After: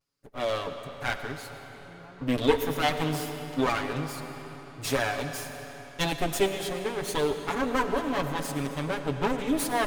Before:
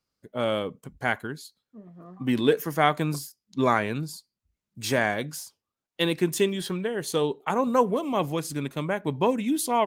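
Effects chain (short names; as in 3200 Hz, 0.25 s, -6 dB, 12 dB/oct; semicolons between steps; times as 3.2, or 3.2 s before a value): minimum comb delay 7.1 ms; on a send at -7 dB: reverb RT60 4.1 s, pre-delay 50 ms; on the sum: vibrato 0.42 Hz 19 cents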